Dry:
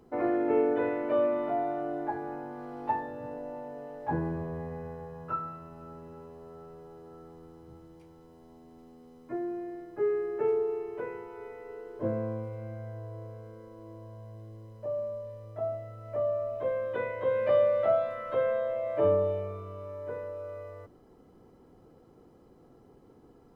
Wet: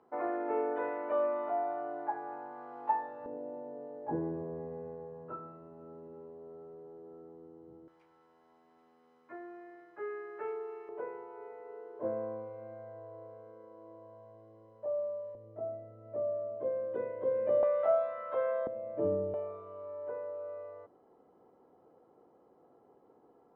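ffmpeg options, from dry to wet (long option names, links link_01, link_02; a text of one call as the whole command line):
ffmpeg -i in.wav -af "asetnsamples=nb_out_samples=441:pad=0,asendcmd='3.26 bandpass f 400;7.88 bandpass f 1500;10.89 bandpass f 730;15.35 bandpass f 340;17.63 bandpass f 910;18.67 bandpass f 250;19.34 bandpass f 740',bandpass=frequency=990:width_type=q:width=1.2:csg=0" out.wav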